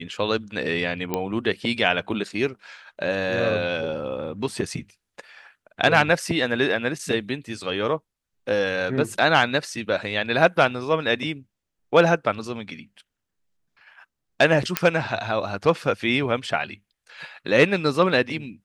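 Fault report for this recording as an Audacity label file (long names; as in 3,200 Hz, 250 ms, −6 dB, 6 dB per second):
1.140000	1.140000	click −10 dBFS
14.770000	14.770000	click −2 dBFS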